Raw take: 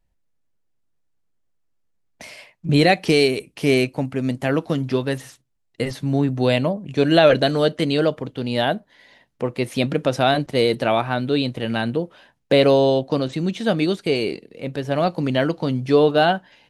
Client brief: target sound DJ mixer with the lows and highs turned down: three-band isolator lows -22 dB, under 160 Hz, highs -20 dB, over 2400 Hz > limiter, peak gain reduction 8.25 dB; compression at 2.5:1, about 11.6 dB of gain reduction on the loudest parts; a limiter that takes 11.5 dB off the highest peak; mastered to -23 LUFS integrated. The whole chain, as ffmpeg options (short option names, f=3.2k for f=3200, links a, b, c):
-filter_complex "[0:a]acompressor=threshold=-28dB:ratio=2.5,alimiter=limit=-24dB:level=0:latency=1,acrossover=split=160 2400:gain=0.0794 1 0.1[a][b][c];[a][b][c]amix=inputs=3:normalize=0,volume=17.5dB,alimiter=limit=-14dB:level=0:latency=1"